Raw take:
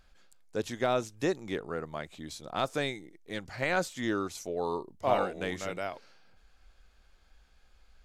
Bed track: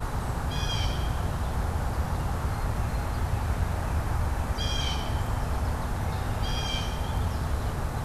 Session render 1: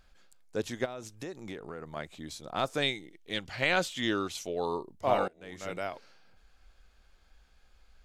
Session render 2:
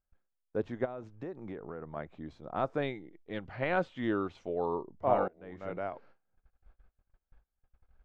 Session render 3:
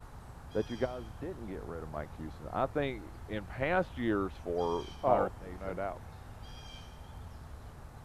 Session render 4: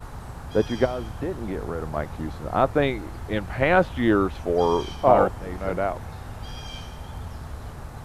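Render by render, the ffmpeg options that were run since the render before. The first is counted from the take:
-filter_complex "[0:a]asplit=3[a][b][c];[a]afade=t=out:st=0.84:d=0.02[d];[b]acompressor=threshold=-36dB:ratio=8:attack=3.2:release=140:knee=1:detection=peak,afade=t=in:st=0.84:d=0.02,afade=t=out:st=1.95:d=0.02[e];[c]afade=t=in:st=1.95:d=0.02[f];[d][e][f]amix=inputs=3:normalize=0,asettb=1/sr,asplit=3[g][h][i];[g]atrim=end=2.824[j];[h]atrim=start=2.82:end=4.66,asetpts=PTS-STARTPTS,afade=t=in:d=0.004:c=qsin,afade=t=out:st=1.836:d=0.004:c=qsin,equalizer=f=3.1k:t=o:w=0.81:g=11[k];[i]atrim=start=4.656[l];[j][k]acrossfade=d=0.004:c1=hsin:c2=qsin[m];[m][l]acrossfade=d=0.004:c1=qsin:c2=hsin,asplit=2[n][o];[n]atrim=end=5.28,asetpts=PTS-STARTPTS,afade=t=out:st=5.276:d=0.004:c=hsin:silence=0.0841395[p];[o]atrim=start=5.28,asetpts=PTS-STARTPTS,afade=t=in:d=0.45:c=qua:silence=0.0841395[q];[p][q]concat=n=2:v=0:a=1"
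-af "lowpass=1.3k,agate=range=-25dB:threshold=-56dB:ratio=16:detection=peak"
-filter_complex "[1:a]volume=-19dB[a];[0:a][a]amix=inputs=2:normalize=0"
-af "volume=11.5dB,alimiter=limit=-3dB:level=0:latency=1"

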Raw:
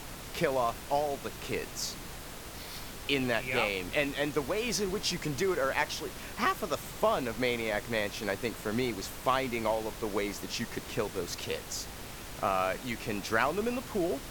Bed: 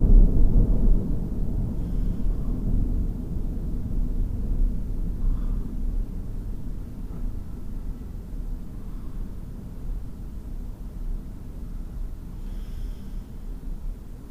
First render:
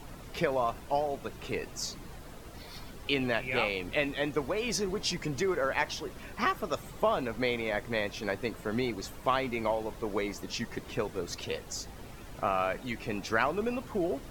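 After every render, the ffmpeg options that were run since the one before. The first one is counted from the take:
-af "afftdn=nr=10:nf=-44"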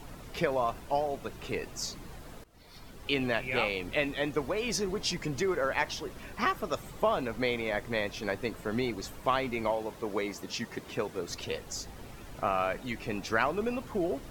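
-filter_complex "[0:a]asettb=1/sr,asplit=3[a][b][c];[a]atrim=end=9.704[d];[b]atrim=start=9.7:end=11.3,asetpts=PTS-STARTPTS,afade=t=in:d=0.004:c=qsin,afade=t=out:st=1.596:d=0.004:c=qsin,highpass=f=120:p=1[e];[c]atrim=start=11.296[f];[d][e]acrossfade=d=0.004:c1=hsin:c2=qsin[g];[g][f]acrossfade=d=0.004:c1=qsin:c2=hsin,asplit=2[h][i];[h]atrim=end=2.44,asetpts=PTS-STARTPTS,afade=t=out:st=2.436:d=0.004:c=hsin:silence=0.0891251[j];[i]atrim=start=2.44,asetpts=PTS-STARTPTS,afade=t=in:d=0.72:silence=0.0891251[k];[j][k]concat=n=2:v=0:a=1"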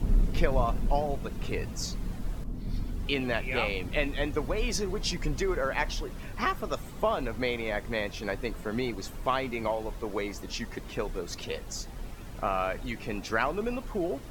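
-filter_complex "[1:a]volume=-9dB[a];[0:a][a]amix=inputs=2:normalize=0"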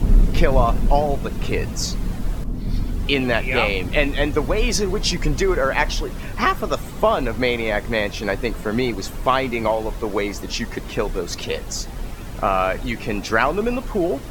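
-af "volume=10dB,alimiter=limit=-3dB:level=0:latency=1"

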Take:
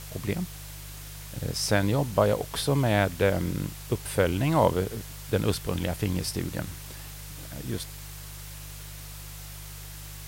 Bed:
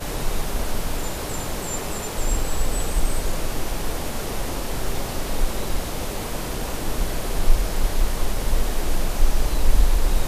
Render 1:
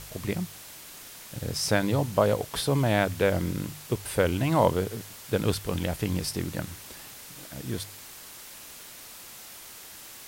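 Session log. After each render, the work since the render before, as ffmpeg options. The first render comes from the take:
-af "bandreject=f=50:t=h:w=4,bandreject=f=100:t=h:w=4,bandreject=f=150:t=h:w=4"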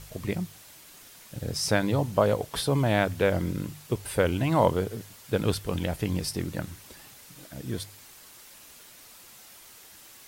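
-af "afftdn=nr=6:nf=-45"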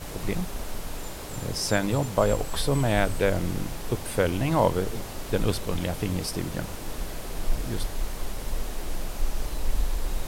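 -filter_complex "[1:a]volume=-9dB[a];[0:a][a]amix=inputs=2:normalize=0"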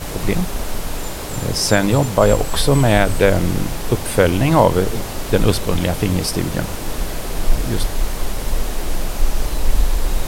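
-af "volume=10dB,alimiter=limit=-1dB:level=0:latency=1"

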